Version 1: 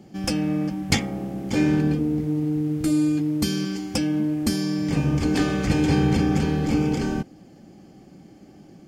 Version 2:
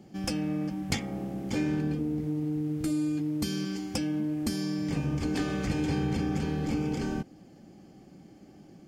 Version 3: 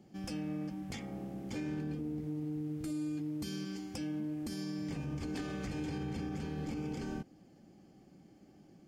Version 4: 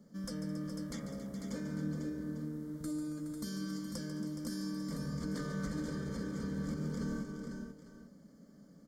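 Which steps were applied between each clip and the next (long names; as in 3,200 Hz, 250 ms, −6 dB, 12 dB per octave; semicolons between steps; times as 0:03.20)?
downward compressor 2 to 1, threshold −24 dBFS, peak gain reduction 5.5 dB; level −4.5 dB
brickwall limiter −23 dBFS, peak gain reduction 10 dB; level −7.5 dB
phaser with its sweep stopped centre 520 Hz, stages 8; on a send: multi-tap delay 144/214/276/419/497/848 ms −10.5/−19.5/−12.5/−10.5/−7.5/−15.5 dB; on the sum: level +2.5 dB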